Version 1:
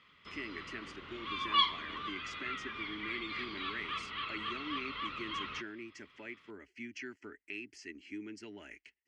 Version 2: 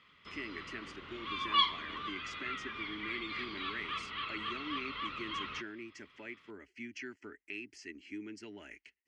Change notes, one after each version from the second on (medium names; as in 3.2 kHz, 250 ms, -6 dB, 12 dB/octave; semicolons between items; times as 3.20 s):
no change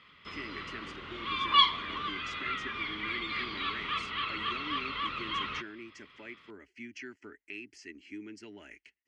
background +5.5 dB